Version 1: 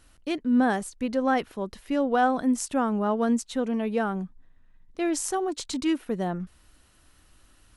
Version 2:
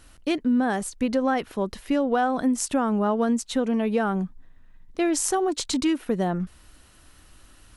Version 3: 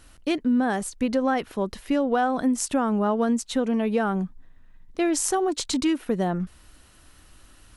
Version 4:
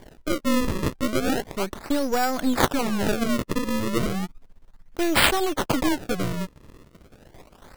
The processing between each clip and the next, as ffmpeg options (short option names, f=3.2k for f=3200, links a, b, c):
-af "acompressor=threshold=-25dB:ratio=6,volume=6dB"
-af anull
-af "aeval=exprs='if(lt(val(0),0),0.251*val(0),val(0))':c=same,aemphasis=mode=production:type=50kf,acrusher=samples=33:mix=1:aa=0.000001:lfo=1:lforange=52.8:lforate=0.34,volume=3dB"